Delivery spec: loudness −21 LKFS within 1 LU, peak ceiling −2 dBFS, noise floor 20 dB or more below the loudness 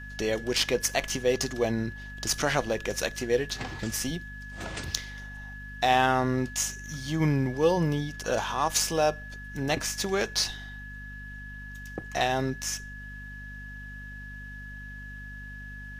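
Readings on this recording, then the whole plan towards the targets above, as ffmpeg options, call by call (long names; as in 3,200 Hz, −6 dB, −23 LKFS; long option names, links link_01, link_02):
mains hum 50 Hz; hum harmonics up to 250 Hz; level of the hum −40 dBFS; interfering tone 1,700 Hz; level of the tone −42 dBFS; integrated loudness −28.0 LKFS; sample peak −5.5 dBFS; target loudness −21.0 LKFS
→ -af "bandreject=frequency=50:width_type=h:width=6,bandreject=frequency=100:width_type=h:width=6,bandreject=frequency=150:width_type=h:width=6,bandreject=frequency=200:width_type=h:width=6,bandreject=frequency=250:width_type=h:width=6"
-af "bandreject=frequency=1700:width=30"
-af "volume=7dB,alimiter=limit=-2dB:level=0:latency=1"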